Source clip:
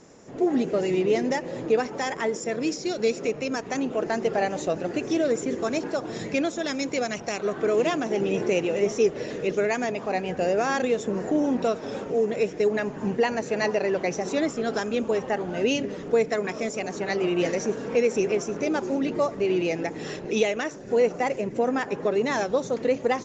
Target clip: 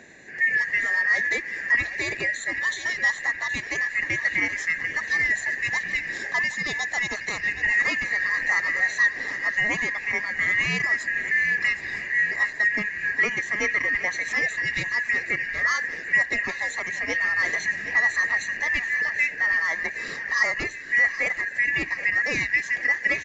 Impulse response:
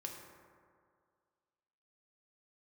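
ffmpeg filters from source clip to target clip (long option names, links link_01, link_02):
-filter_complex "[0:a]afftfilt=real='real(if(lt(b,272),68*(eq(floor(b/68),0)*1+eq(floor(b/68),1)*0+eq(floor(b/68),2)*3+eq(floor(b/68),3)*2)+mod(b,68),b),0)':imag='imag(if(lt(b,272),68*(eq(floor(b/68),0)*1+eq(floor(b/68),1)*0+eq(floor(b/68),2)*3+eq(floor(b/68),3)*2)+mod(b,68),b),0)':win_size=2048:overlap=0.75,acrossover=split=110|730[link_01][link_02][link_03];[link_02]acompressor=mode=upward:threshold=-41dB:ratio=2.5[link_04];[link_01][link_04][link_03]amix=inputs=3:normalize=0,aecho=1:1:772|1544|2316|3088|3860|4632:0.2|0.118|0.0695|0.041|0.0242|0.0143"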